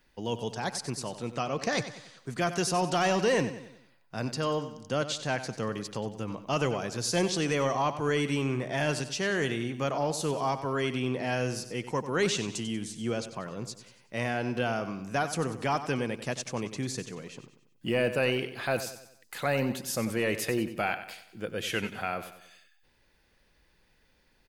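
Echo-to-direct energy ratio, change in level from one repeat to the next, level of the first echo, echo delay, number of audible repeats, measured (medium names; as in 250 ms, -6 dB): -11.0 dB, -7.0 dB, -12.0 dB, 94 ms, 4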